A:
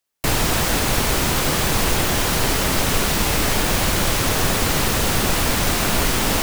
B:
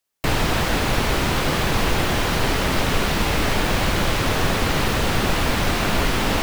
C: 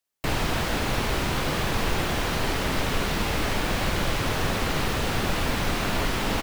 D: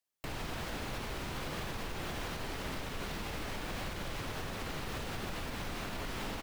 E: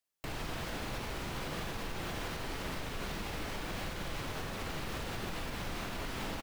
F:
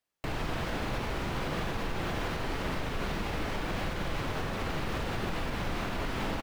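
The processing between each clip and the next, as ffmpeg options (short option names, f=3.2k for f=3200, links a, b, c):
-filter_complex "[0:a]acrossover=split=4500[a][b];[b]acompressor=threshold=-34dB:ratio=4:attack=1:release=60[c];[a][c]amix=inputs=2:normalize=0"
-filter_complex "[0:a]asplit=2[a][b];[b]adelay=47,volume=-11.5dB[c];[a][c]amix=inputs=2:normalize=0,volume=-5.5dB"
-af "alimiter=limit=-23.5dB:level=0:latency=1:release=248,volume=-6dB"
-filter_complex "[0:a]asplit=2[a][b];[b]adelay=41,volume=-11dB[c];[a][c]amix=inputs=2:normalize=0"
-af "highshelf=f=4.3k:g=-10,volume=6.5dB"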